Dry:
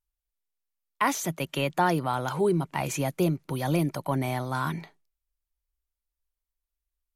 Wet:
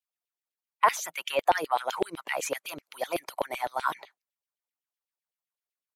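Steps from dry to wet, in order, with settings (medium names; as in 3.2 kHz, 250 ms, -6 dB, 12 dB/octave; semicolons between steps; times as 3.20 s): tempo 1.2×; LFO high-pass saw down 7.9 Hz 440–3200 Hz; harmonic-percussive split harmonic -14 dB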